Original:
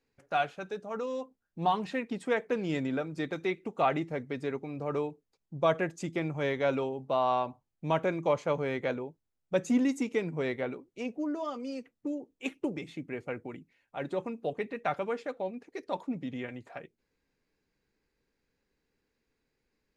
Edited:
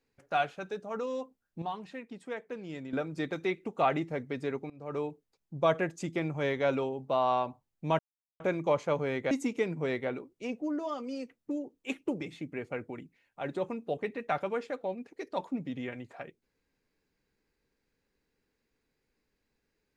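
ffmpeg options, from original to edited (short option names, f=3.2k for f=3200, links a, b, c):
-filter_complex "[0:a]asplit=6[a][b][c][d][e][f];[a]atrim=end=1.622[g];[b]atrim=start=1.618:end=2.932,asetpts=PTS-STARTPTS,volume=-9.5dB[h];[c]atrim=start=2.928:end=4.7,asetpts=PTS-STARTPTS,afade=t=out:st=1.768:d=0.004:c=hsin:silence=0.0841395[i];[d]atrim=start=4.7:end=7.99,asetpts=PTS-STARTPTS,afade=t=in:d=0.39:silence=0.0841395,afade=t=out:st=3.286:d=0.004:c=hsin,apad=pad_dur=0.41[j];[e]atrim=start=7.99:end=8.902,asetpts=PTS-STARTPTS,afade=t=in:d=0.004:c=hsin[k];[f]atrim=start=9.868[l];[g][h]acrossfade=d=0.004:c1=hsin:c2=hsin[m];[i][j][k]concat=n=3:v=0:a=1[n];[m][n]acrossfade=d=0.004:c1=hsin:c2=hsin[o];[o][l]acrossfade=d=0.004:c1=hsin:c2=hsin"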